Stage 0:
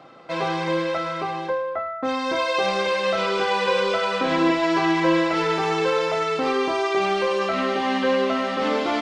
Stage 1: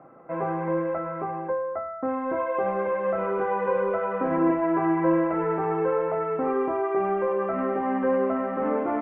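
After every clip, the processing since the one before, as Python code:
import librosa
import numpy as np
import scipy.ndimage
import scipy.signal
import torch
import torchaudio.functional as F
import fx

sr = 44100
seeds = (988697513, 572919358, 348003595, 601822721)

y = scipy.signal.sosfilt(scipy.signal.bessel(8, 1100.0, 'lowpass', norm='mag', fs=sr, output='sos'), x)
y = y * 10.0 ** (-1.5 / 20.0)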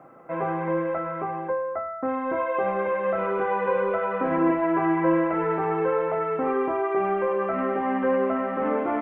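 y = fx.high_shelf(x, sr, hz=2700.0, db=12.0)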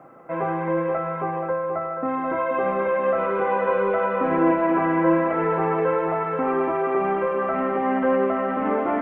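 y = fx.echo_feedback(x, sr, ms=480, feedback_pct=58, wet_db=-9)
y = y * 10.0 ** (2.0 / 20.0)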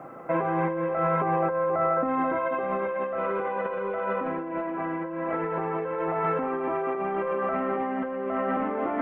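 y = fx.over_compress(x, sr, threshold_db=-28.0, ratio=-1.0)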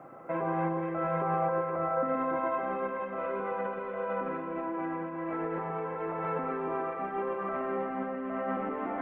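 y = fx.echo_alternate(x, sr, ms=121, hz=1300.0, feedback_pct=78, wet_db=-4.0)
y = y * 10.0 ** (-7.0 / 20.0)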